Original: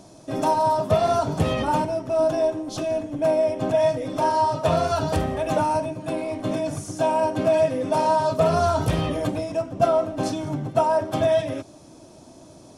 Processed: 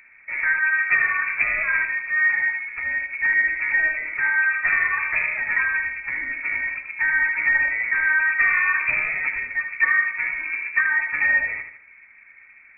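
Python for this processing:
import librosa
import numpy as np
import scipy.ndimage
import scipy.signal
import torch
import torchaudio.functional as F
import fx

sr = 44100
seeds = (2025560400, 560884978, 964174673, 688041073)

p1 = np.sign(x) * np.maximum(np.abs(x) - 10.0 ** (-34.5 / 20.0), 0.0)
p2 = x + (p1 * librosa.db_to_amplitude(-9.0))
p3 = fx.echo_feedback(p2, sr, ms=77, feedback_pct=42, wet_db=-8.0)
p4 = fx.freq_invert(p3, sr, carrier_hz=2500)
y = p4 * librosa.db_to_amplitude(-3.0)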